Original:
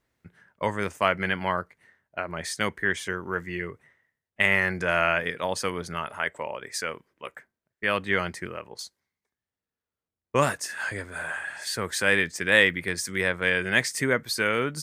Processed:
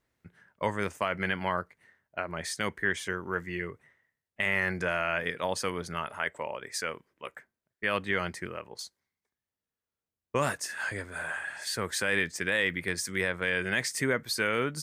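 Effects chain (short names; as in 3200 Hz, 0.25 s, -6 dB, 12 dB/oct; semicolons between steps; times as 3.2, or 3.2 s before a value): limiter -12.5 dBFS, peak gain reduction 8 dB; gain -2.5 dB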